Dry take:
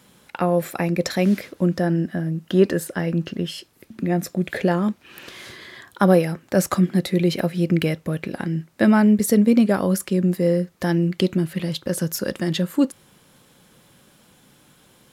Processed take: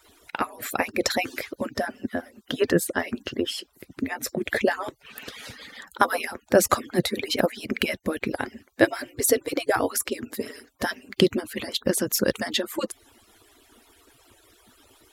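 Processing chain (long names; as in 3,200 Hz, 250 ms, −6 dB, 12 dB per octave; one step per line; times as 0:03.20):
harmonic-percussive split with one part muted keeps percussive
level +3.5 dB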